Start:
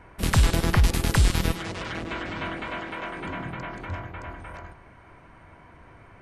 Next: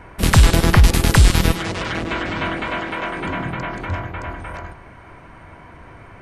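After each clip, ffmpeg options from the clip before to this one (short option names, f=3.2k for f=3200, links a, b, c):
-af "acontrast=26,volume=3.5dB"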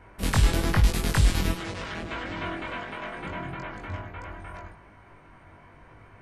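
-af "flanger=delay=19.5:depth=2:speed=1,volume=-7dB"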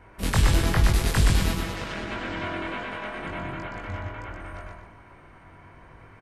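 -af "aecho=1:1:122|244|366|488:0.668|0.221|0.0728|0.024"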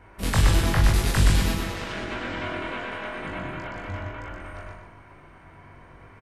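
-filter_complex "[0:a]asplit=2[a][b];[b]adelay=41,volume=-7dB[c];[a][c]amix=inputs=2:normalize=0"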